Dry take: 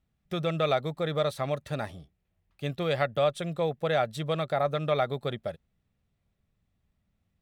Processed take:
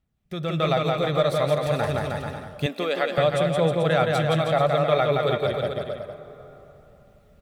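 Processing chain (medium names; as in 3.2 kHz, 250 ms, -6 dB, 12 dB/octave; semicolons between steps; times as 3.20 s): phaser 0.29 Hz, delay 2.4 ms, feedback 24%; on a send: bouncing-ball echo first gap 170 ms, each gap 0.85×, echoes 5; on the sum: plate-style reverb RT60 3.2 s, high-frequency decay 0.6×, DRR 15.5 dB; in parallel at -1 dB: compression, threshold -32 dBFS, peak gain reduction 12.5 dB; 2.66–3.18 s: on the sum: elliptic high-pass 200 Hz, stop band 40 dB; level rider gain up to 16 dB; trim -7.5 dB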